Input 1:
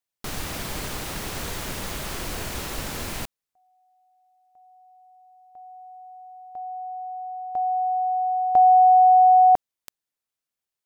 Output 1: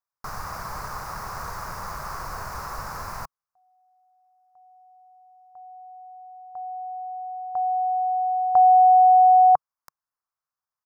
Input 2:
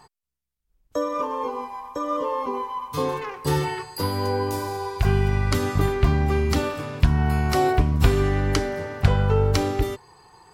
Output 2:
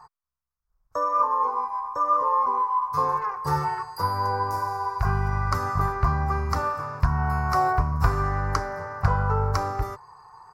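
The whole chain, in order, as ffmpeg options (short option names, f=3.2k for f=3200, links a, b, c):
-af "firequalizer=gain_entry='entry(140,0);entry(280,-12);entry(460,-3);entry(1100,13);entry(1900,-2);entry(3200,-19);entry(5000,0);entry(8300,-8);entry(12000,-4)':delay=0.05:min_phase=1,volume=-4dB"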